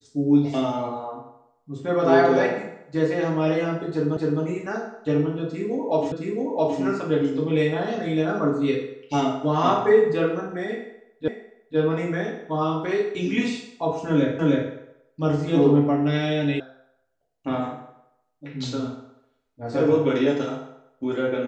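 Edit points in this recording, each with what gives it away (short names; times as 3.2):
4.17 repeat of the last 0.26 s
6.12 repeat of the last 0.67 s
11.28 repeat of the last 0.5 s
14.39 repeat of the last 0.31 s
16.6 sound cut off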